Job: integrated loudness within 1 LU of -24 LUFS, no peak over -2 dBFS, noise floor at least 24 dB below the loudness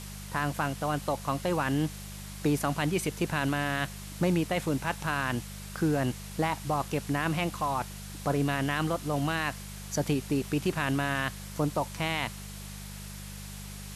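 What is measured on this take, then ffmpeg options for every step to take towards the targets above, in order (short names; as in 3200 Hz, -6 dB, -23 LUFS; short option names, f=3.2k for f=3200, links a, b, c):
hum 50 Hz; harmonics up to 200 Hz; hum level -40 dBFS; noise floor -42 dBFS; noise floor target -55 dBFS; loudness -30.5 LUFS; peak -13.5 dBFS; loudness target -24.0 LUFS
-> -af "bandreject=f=50:t=h:w=4,bandreject=f=100:t=h:w=4,bandreject=f=150:t=h:w=4,bandreject=f=200:t=h:w=4"
-af "afftdn=nr=13:nf=-42"
-af "volume=6.5dB"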